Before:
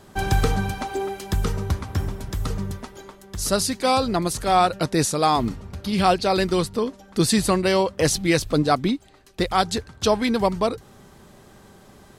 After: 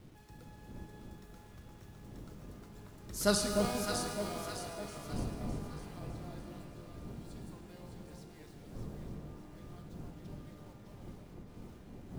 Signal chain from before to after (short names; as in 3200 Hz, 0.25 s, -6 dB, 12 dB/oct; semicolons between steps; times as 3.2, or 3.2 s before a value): Doppler pass-by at 3.31, 25 m/s, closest 1.3 m; wind noise 210 Hz -46 dBFS; in parallel at -2 dB: compressor, threshold -50 dBFS, peak gain reduction 29.5 dB; on the sum: bit-crush 10-bit; on a send: echo with dull and thin repeats by turns 0.304 s, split 1000 Hz, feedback 65%, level -2 dB; on the sum: shimmer reverb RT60 2.4 s, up +12 st, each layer -8 dB, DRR 5 dB; gain -6 dB